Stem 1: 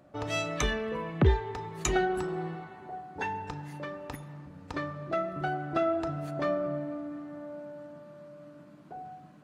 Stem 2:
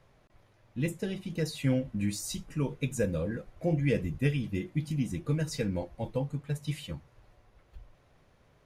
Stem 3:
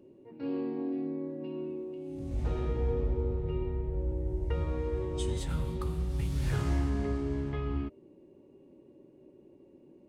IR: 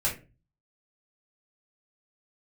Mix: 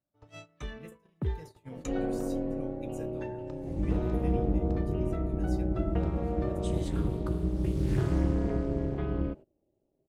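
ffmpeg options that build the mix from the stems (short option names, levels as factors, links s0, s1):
-filter_complex "[0:a]lowshelf=f=230:g=8,volume=0.178[s0];[1:a]highshelf=f=9800:g=10,volume=0.126[s1];[2:a]tiltshelf=f=970:g=3.5,tremolo=f=250:d=0.974,adelay=1450,volume=1.41[s2];[s0][s1][s2]amix=inputs=3:normalize=0,agate=range=0.0891:threshold=0.00708:ratio=16:detection=peak"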